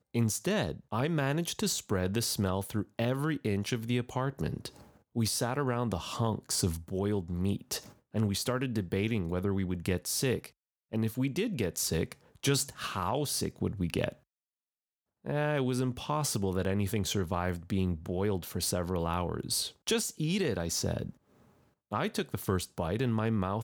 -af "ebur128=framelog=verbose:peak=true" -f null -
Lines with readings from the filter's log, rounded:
Integrated loudness:
  I:         -32.1 LUFS
  Threshold: -42.3 LUFS
Loudness range:
  LRA:         1.9 LU
  Threshold: -52.6 LUFS
  LRA low:   -33.6 LUFS
  LRA high:  -31.6 LUFS
True peak:
  Peak:      -11.7 dBFS